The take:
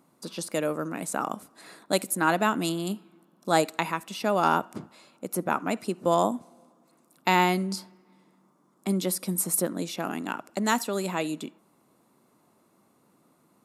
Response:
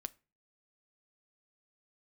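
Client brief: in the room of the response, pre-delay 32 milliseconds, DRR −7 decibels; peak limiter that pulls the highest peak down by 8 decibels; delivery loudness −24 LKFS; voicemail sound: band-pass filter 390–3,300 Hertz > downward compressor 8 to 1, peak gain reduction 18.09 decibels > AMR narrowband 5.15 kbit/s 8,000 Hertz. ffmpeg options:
-filter_complex "[0:a]alimiter=limit=-15dB:level=0:latency=1,asplit=2[link_01][link_02];[1:a]atrim=start_sample=2205,adelay=32[link_03];[link_02][link_03]afir=irnorm=-1:irlink=0,volume=10dB[link_04];[link_01][link_04]amix=inputs=2:normalize=0,highpass=390,lowpass=3300,acompressor=threshold=-34dB:ratio=8,volume=17dB" -ar 8000 -c:a libopencore_amrnb -b:a 5150

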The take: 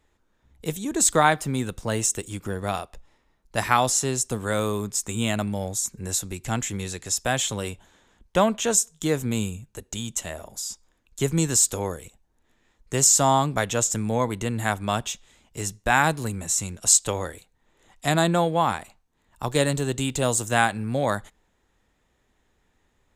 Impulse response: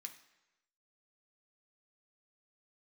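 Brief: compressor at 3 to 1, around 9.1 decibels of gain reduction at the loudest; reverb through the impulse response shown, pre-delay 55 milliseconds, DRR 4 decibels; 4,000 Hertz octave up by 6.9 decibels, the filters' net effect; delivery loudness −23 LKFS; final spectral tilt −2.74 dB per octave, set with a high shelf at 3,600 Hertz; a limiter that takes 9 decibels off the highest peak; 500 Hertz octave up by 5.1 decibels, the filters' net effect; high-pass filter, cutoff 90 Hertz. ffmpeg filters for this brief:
-filter_complex "[0:a]highpass=90,equalizer=frequency=500:width_type=o:gain=6,highshelf=frequency=3600:gain=7.5,equalizer=frequency=4000:width_type=o:gain=3.5,acompressor=threshold=-19dB:ratio=3,alimiter=limit=-14dB:level=0:latency=1,asplit=2[link_01][link_02];[1:a]atrim=start_sample=2205,adelay=55[link_03];[link_02][link_03]afir=irnorm=-1:irlink=0,volume=1.5dB[link_04];[link_01][link_04]amix=inputs=2:normalize=0,volume=1.5dB"

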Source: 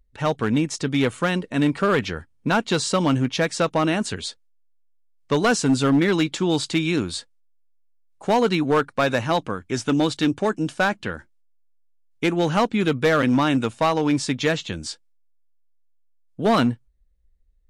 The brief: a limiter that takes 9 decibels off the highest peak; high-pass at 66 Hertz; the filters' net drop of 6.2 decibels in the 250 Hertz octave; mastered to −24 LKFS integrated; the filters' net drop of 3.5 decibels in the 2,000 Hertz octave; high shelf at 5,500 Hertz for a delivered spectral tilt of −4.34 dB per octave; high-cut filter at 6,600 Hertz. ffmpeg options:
ffmpeg -i in.wav -af "highpass=66,lowpass=6600,equalizer=frequency=250:width_type=o:gain=-8,equalizer=frequency=2000:width_type=o:gain=-5.5,highshelf=frequency=5500:gain=6,volume=6dB,alimiter=limit=-14dB:level=0:latency=1" out.wav

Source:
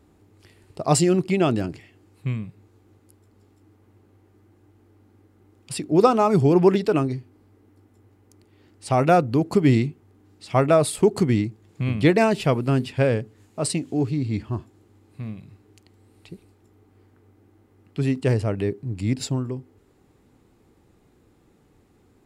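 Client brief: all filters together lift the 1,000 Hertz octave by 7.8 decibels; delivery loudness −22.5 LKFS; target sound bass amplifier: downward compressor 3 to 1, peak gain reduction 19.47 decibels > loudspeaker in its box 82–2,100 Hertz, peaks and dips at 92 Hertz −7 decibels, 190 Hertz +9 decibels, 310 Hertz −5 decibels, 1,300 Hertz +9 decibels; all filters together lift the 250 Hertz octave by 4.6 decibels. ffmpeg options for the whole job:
ffmpeg -i in.wav -af "equalizer=frequency=250:width_type=o:gain=3,equalizer=frequency=1000:width_type=o:gain=6,acompressor=threshold=-35dB:ratio=3,highpass=frequency=82:width=0.5412,highpass=frequency=82:width=1.3066,equalizer=frequency=92:width_type=q:width=4:gain=-7,equalizer=frequency=190:width_type=q:width=4:gain=9,equalizer=frequency=310:width_type=q:width=4:gain=-5,equalizer=frequency=1300:width_type=q:width=4:gain=9,lowpass=frequency=2100:width=0.5412,lowpass=frequency=2100:width=1.3066,volume=11.5dB" out.wav

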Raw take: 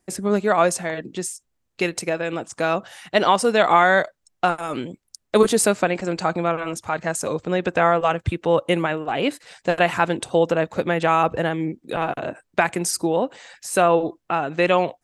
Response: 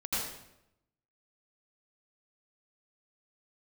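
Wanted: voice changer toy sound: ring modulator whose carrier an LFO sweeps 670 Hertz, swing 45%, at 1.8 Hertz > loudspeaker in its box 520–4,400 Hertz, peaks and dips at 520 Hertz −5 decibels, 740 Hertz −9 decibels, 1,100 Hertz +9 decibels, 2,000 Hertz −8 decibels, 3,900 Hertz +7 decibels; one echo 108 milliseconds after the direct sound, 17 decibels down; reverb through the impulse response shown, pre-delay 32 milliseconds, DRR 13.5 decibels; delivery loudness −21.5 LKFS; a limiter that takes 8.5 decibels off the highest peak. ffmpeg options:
-filter_complex "[0:a]alimiter=limit=-11dB:level=0:latency=1,aecho=1:1:108:0.141,asplit=2[link_01][link_02];[1:a]atrim=start_sample=2205,adelay=32[link_03];[link_02][link_03]afir=irnorm=-1:irlink=0,volume=-20dB[link_04];[link_01][link_04]amix=inputs=2:normalize=0,aeval=exprs='val(0)*sin(2*PI*670*n/s+670*0.45/1.8*sin(2*PI*1.8*n/s))':channel_layout=same,highpass=520,equalizer=frequency=520:width_type=q:width=4:gain=-5,equalizer=frequency=740:width_type=q:width=4:gain=-9,equalizer=frequency=1100:width_type=q:width=4:gain=9,equalizer=frequency=2000:width_type=q:width=4:gain=-8,equalizer=frequency=3900:width_type=q:width=4:gain=7,lowpass=frequency=4400:width=0.5412,lowpass=frequency=4400:width=1.3066,volume=5.5dB"

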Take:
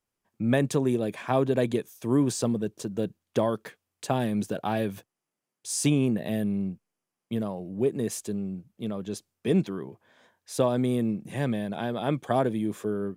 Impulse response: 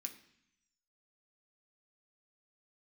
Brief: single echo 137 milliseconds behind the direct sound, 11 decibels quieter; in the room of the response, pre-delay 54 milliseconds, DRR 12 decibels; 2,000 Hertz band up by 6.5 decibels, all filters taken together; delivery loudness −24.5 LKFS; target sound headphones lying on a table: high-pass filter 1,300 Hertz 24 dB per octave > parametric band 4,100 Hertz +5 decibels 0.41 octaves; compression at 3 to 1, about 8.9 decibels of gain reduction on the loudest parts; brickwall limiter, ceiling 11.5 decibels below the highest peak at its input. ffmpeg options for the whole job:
-filter_complex "[0:a]equalizer=frequency=2000:width_type=o:gain=8.5,acompressor=threshold=-30dB:ratio=3,alimiter=level_in=1dB:limit=-24dB:level=0:latency=1,volume=-1dB,aecho=1:1:137:0.282,asplit=2[link_01][link_02];[1:a]atrim=start_sample=2205,adelay=54[link_03];[link_02][link_03]afir=irnorm=-1:irlink=0,volume=-7.5dB[link_04];[link_01][link_04]amix=inputs=2:normalize=0,highpass=frequency=1300:width=0.5412,highpass=frequency=1300:width=1.3066,equalizer=frequency=4100:width_type=o:width=0.41:gain=5,volume=17.5dB"

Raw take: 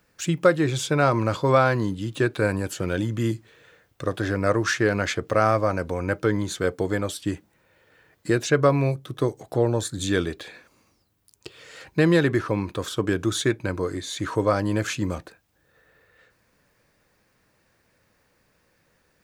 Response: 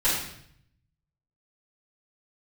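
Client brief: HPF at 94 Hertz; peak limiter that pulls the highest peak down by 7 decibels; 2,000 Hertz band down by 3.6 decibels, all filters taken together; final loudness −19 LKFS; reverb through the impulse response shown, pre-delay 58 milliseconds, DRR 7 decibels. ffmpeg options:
-filter_complex "[0:a]highpass=94,equalizer=frequency=2000:width_type=o:gain=-5,alimiter=limit=-12.5dB:level=0:latency=1,asplit=2[link_01][link_02];[1:a]atrim=start_sample=2205,adelay=58[link_03];[link_02][link_03]afir=irnorm=-1:irlink=0,volume=-20dB[link_04];[link_01][link_04]amix=inputs=2:normalize=0,volume=6.5dB"

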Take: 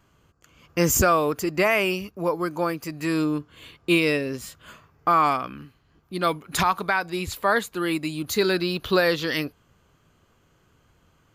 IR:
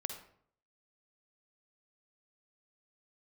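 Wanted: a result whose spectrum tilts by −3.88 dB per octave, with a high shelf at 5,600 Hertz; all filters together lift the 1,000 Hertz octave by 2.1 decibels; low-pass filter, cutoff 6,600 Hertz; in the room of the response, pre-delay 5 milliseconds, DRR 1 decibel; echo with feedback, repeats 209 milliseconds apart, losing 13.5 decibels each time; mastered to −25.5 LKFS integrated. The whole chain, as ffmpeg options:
-filter_complex "[0:a]lowpass=6600,equalizer=frequency=1000:width_type=o:gain=3,highshelf=frequency=5600:gain=-7.5,aecho=1:1:209|418:0.211|0.0444,asplit=2[link_01][link_02];[1:a]atrim=start_sample=2205,adelay=5[link_03];[link_02][link_03]afir=irnorm=-1:irlink=0,volume=-1dB[link_04];[link_01][link_04]amix=inputs=2:normalize=0,volume=-5dB"

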